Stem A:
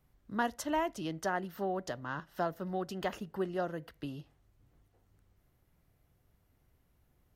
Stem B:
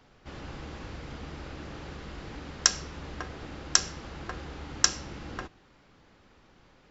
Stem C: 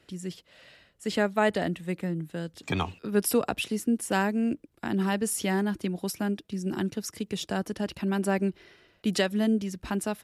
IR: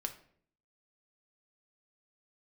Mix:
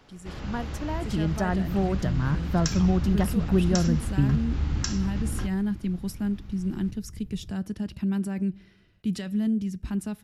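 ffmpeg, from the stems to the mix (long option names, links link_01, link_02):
-filter_complex "[0:a]lowshelf=frequency=390:gain=10,adelay=150,volume=2.5dB[link_01];[1:a]volume=1dB,asplit=2[link_02][link_03];[link_03]volume=-11.5dB[link_04];[2:a]volume=-8.5dB,asplit=3[link_05][link_06][link_07];[link_06]volume=-12dB[link_08];[link_07]apad=whole_len=331163[link_09];[link_01][link_09]sidechaingate=range=-7dB:threshold=-60dB:ratio=16:detection=peak[link_10];[link_02][link_05]amix=inputs=2:normalize=0,alimiter=level_in=6.5dB:limit=-24dB:level=0:latency=1:release=16,volume=-6.5dB,volume=0dB[link_11];[3:a]atrim=start_sample=2205[link_12];[link_04][link_08]amix=inputs=2:normalize=0[link_13];[link_13][link_12]afir=irnorm=-1:irlink=0[link_14];[link_10][link_11][link_14]amix=inputs=3:normalize=0,asubboost=boost=6.5:cutoff=200"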